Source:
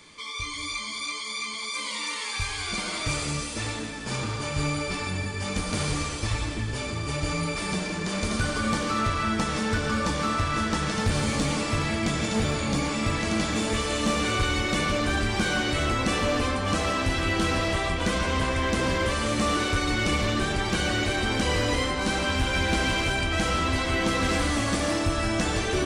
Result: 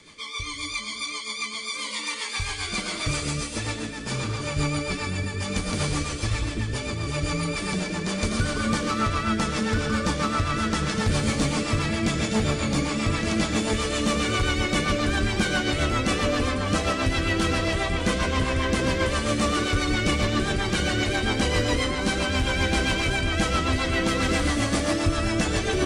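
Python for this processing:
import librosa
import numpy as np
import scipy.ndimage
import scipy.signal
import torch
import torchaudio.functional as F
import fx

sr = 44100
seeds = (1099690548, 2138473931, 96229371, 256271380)

y = fx.rotary(x, sr, hz=7.5)
y = y * librosa.db_to_amplitude(3.5)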